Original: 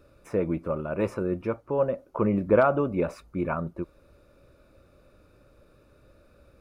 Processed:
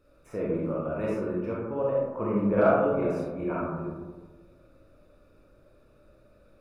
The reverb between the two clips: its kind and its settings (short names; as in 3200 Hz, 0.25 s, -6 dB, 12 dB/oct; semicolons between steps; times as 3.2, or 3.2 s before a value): digital reverb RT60 1.4 s, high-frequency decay 0.3×, pre-delay 0 ms, DRR -6 dB; gain -9 dB